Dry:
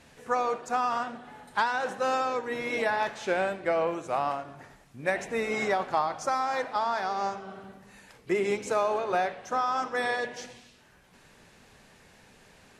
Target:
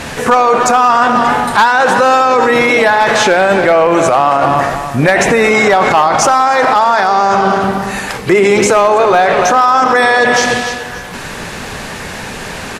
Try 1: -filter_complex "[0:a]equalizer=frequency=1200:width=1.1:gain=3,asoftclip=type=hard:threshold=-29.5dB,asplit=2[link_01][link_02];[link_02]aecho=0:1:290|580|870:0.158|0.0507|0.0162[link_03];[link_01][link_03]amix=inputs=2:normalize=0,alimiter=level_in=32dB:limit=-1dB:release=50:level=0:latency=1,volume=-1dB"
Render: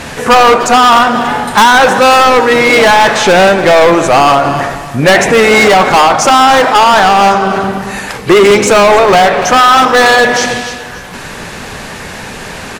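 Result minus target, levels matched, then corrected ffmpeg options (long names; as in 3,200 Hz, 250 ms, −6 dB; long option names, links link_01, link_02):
hard clipping: distortion +14 dB
-filter_complex "[0:a]equalizer=frequency=1200:width=1.1:gain=3,asoftclip=type=hard:threshold=-18.5dB,asplit=2[link_01][link_02];[link_02]aecho=0:1:290|580|870:0.158|0.0507|0.0162[link_03];[link_01][link_03]amix=inputs=2:normalize=0,alimiter=level_in=32dB:limit=-1dB:release=50:level=0:latency=1,volume=-1dB"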